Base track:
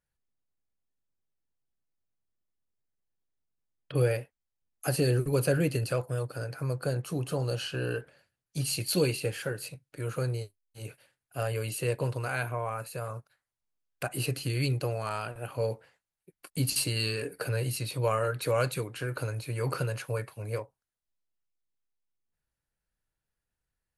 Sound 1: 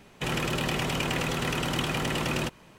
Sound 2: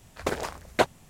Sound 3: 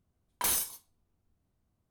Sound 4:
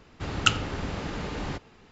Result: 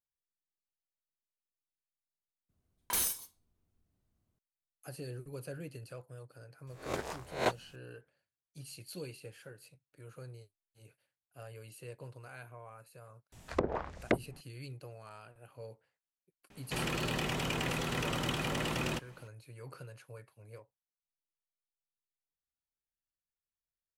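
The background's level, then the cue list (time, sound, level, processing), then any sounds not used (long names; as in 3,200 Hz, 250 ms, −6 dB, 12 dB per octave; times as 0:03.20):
base track −17.5 dB
0:02.49: overwrite with 3 −2.5 dB + parametric band 880 Hz −3 dB 1.1 octaves
0:06.67: mix in 2 −10.5 dB + peak hold with a rise ahead of every peak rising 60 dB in 0.38 s
0:13.32: mix in 2 −1.5 dB + treble cut that deepens with the level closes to 350 Hz, closed at −23.5 dBFS
0:16.50: mix in 1 −6 dB
not used: 4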